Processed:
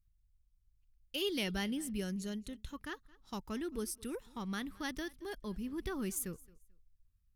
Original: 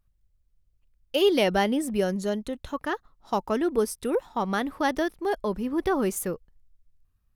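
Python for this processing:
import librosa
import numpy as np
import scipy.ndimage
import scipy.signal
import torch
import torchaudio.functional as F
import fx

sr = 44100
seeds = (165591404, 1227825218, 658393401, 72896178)

p1 = fx.tone_stack(x, sr, knobs='6-0-2')
p2 = p1 + fx.echo_feedback(p1, sr, ms=220, feedback_pct=22, wet_db=-23, dry=0)
y = p2 * librosa.db_to_amplitude(8.5)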